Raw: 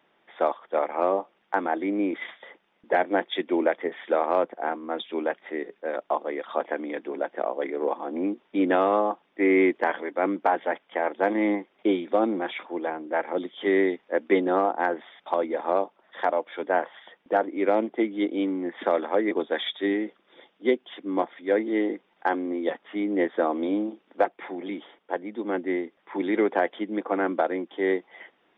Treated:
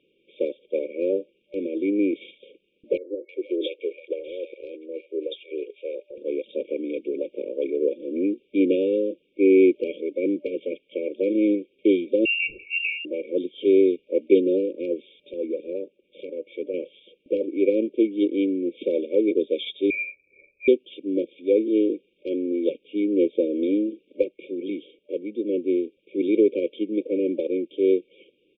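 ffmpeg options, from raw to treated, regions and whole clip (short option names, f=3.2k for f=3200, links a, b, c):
-filter_complex "[0:a]asettb=1/sr,asplit=3[a][b][c];[a]atrim=end=2.974[d];[b]atrim=start=2.97:end=6.18,asetpts=PTS-STARTPTS,afade=t=in:d=0.004:c=qsin,afade=t=out:st=3.206:d=0.004:c=qsin,highpass=f=390:w=0.5412,highpass=f=390:w=1.3066,acompressor=threshold=-24dB:ratio=5:attack=3.2:release=140:knee=1:detection=peak,acrossover=split=810[e][f];[f]adelay=320[g];[e][g]amix=inputs=2:normalize=0,atrim=end_sample=141561[h];[c]atrim=start=6.176[i];[d][h]acrossfade=d=0.004:c1=hsin:c2=qsin[j];[j][i]acrossfade=d=0.004:c1=qsin:c2=hsin,asettb=1/sr,asplit=3[k][l][m];[k]atrim=end=12.254[n];[l]atrim=start=12.25:end=13.05,asetpts=PTS-STARTPTS,afade=t=in:d=0.004:c=qsin,afade=t=out:st=0.796:d=0.004:c=qsin,bandreject=f=60:t=h:w=6,bandreject=f=120:t=h:w=6,bandreject=f=180:t=h:w=6,bandreject=f=240:t=h:w=6,bandreject=f=300:t=h:w=6,bandreject=f=360:t=h:w=6,bandreject=f=420:t=h:w=6,bandreject=f=480:t=h:w=6,bandreject=f=540:t=h:w=6,bandreject=f=600:t=h:w=6,aecho=1:1:2.2:0.98,atrim=end_sample=35280,lowpass=f=2.6k:t=q:w=0.5098,lowpass=f=2.6k:t=q:w=0.6013,lowpass=f=2.6k:t=q:w=0.9,lowpass=f=2.6k:t=q:w=2.563,afreqshift=-3100[o];[m]atrim=start=13.046[p];[n][o]acrossfade=d=0.004:c1=hsin:c2=qsin[q];[q][p]acrossfade=d=0.004:c1=qsin:c2=hsin,asettb=1/sr,asplit=3[r][s][t];[r]atrim=end=15.324[u];[s]atrim=start=15.32:end=16.74,asetpts=PTS-STARTPTS,afade=t=in:d=0.004:c=qsin,afade=t=out:st=1.416:d=0.004:c=qsin,lowpass=3k,acompressor=threshold=-32dB:ratio=1.5:attack=3.2:release=140:knee=1:detection=peak[v];[t]atrim=start=16.736[w];[u][v]acrossfade=d=0.004:c1=hsin:c2=qsin[x];[x][w]acrossfade=d=0.004:c1=qsin:c2=hsin,asettb=1/sr,asplit=3[y][z][aa];[y]atrim=end=19.904[ab];[z]atrim=start=19.9:end=20.68,asetpts=PTS-STARTPTS,afade=t=in:d=0.004:c=qsin,afade=t=out:st=0.776:d=0.004:c=qsin,lowpass=f=2.3k:t=q:w=0.5098,lowpass=f=2.3k:t=q:w=0.6013,lowpass=f=2.3k:t=q:w=0.9,lowpass=f=2.3k:t=q:w=2.563,afreqshift=-2700,acompressor=threshold=-32dB:ratio=2.5:attack=3.2:release=140:knee=1:detection=peak,asplit=2[ac][ad];[ad]adelay=44,volume=-6dB[ae];[ac][ae]amix=inputs=2:normalize=0,atrim=end_sample=34398[af];[aa]atrim=start=20.676[ag];[ab][af]acrossfade=d=0.004:c1=hsin:c2=qsin[ah];[ah][ag]acrossfade=d=0.004:c1=qsin:c2=hsin,afftfilt=real='re*(1-between(b*sr/4096,590,2200))':imag='im*(1-between(b*sr/4096,590,2200))':win_size=4096:overlap=0.75,lowpass=2.9k,aecho=1:1:2.5:0.38,volume=3dB"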